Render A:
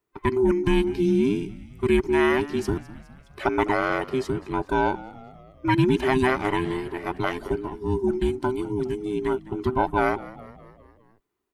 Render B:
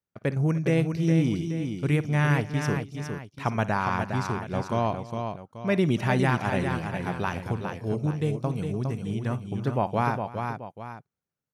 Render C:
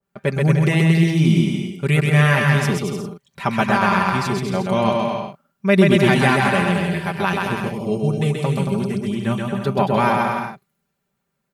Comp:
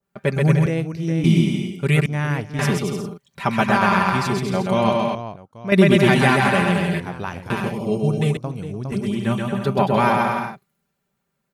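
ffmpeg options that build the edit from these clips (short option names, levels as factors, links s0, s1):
-filter_complex "[1:a]asplit=5[s0][s1][s2][s3][s4];[2:a]asplit=6[s5][s6][s7][s8][s9][s10];[s5]atrim=end=0.662[s11];[s0]atrim=start=0.658:end=1.242[s12];[s6]atrim=start=1.238:end=2.062[s13];[s1]atrim=start=2.058:end=2.592[s14];[s7]atrim=start=2.588:end=5.152[s15];[s2]atrim=start=5.148:end=5.722[s16];[s8]atrim=start=5.718:end=7.002[s17];[s3]atrim=start=6.998:end=7.502[s18];[s9]atrim=start=7.498:end=8.372[s19];[s4]atrim=start=8.368:end=8.922[s20];[s10]atrim=start=8.918[s21];[s11][s12]acrossfade=d=0.004:c1=hsin:c2=hsin[s22];[s22][s13]acrossfade=d=0.004:c1=hsin:c2=hsin[s23];[s23][s14]acrossfade=d=0.004:c1=hsin:c2=hsin[s24];[s24][s15]acrossfade=d=0.004:c1=hsin:c2=hsin[s25];[s25][s16]acrossfade=d=0.004:c1=hsin:c2=hsin[s26];[s26][s17]acrossfade=d=0.004:c1=hsin:c2=hsin[s27];[s27][s18]acrossfade=d=0.004:c1=hsin:c2=hsin[s28];[s28][s19]acrossfade=d=0.004:c1=hsin:c2=hsin[s29];[s29][s20]acrossfade=d=0.004:c1=hsin:c2=hsin[s30];[s30][s21]acrossfade=d=0.004:c1=hsin:c2=hsin"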